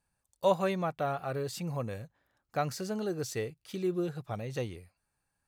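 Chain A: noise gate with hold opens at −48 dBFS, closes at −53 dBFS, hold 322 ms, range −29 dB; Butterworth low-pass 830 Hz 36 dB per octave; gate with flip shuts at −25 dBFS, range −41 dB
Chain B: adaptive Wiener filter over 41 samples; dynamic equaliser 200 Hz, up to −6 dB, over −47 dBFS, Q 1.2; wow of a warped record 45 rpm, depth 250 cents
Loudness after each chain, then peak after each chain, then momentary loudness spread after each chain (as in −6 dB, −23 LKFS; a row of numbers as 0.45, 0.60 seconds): −39.5, −36.5 LKFS; −24.5, −14.5 dBFS; 11, 13 LU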